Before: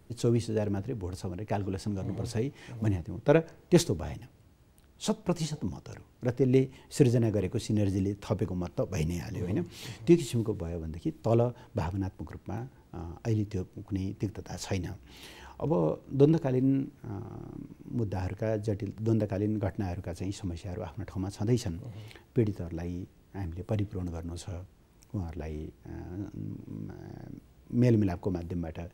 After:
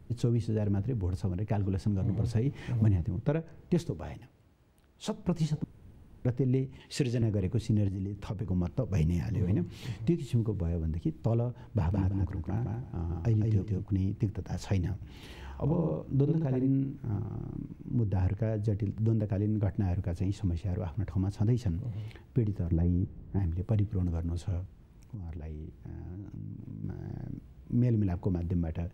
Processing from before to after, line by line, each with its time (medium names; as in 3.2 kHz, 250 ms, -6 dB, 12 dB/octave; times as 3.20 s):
2.46–3.09 s: gain +5.5 dB
3.90–5.14 s: tone controls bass -11 dB, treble 0 dB
5.64–6.25 s: room tone
6.80–7.22 s: frequency weighting D
7.88–8.49 s: compression 12:1, threshold -33 dBFS
11.64–13.84 s: feedback delay 166 ms, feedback 22%, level -4 dB
14.94–17.18 s: delay 74 ms -4 dB
17.86–18.48 s: treble shelf 5.8 kHz -5 dB
22.71–23.39 s: tilt shelf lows +8 dB, about 1.3 kHz
24.60–26.84 s: compression 8:1, threshold -41 dBFS
whole clip: compression 4:1, threshold -28 dBFS; tone controls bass +9 dB, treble -6 dB; trim -2 dB